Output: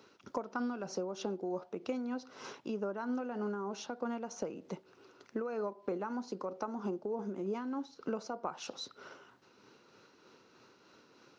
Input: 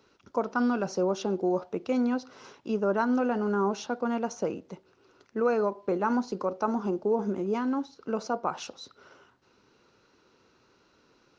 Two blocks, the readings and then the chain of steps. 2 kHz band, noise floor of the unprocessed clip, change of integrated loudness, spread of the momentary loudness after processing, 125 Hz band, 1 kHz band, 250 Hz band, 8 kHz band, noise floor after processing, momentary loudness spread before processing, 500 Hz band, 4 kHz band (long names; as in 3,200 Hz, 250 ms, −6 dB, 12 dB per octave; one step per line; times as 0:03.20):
−10.0 dB, −65 dBFS, −10.0 dB, 8 LU, −9.5 dB, −10.5 dB, −10.0 dB, can't be measured, −65 dBFS, 13 LU, −10.0 dB, −4.0 dB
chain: high-pass filter 130 Hz 12 dB per octave
downward compressor 6 to 1, threshold −37 dBFS, peak gain reduction 15 dB
amplitude tremolo 3.2 Hz, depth 36%
level +3.5 dB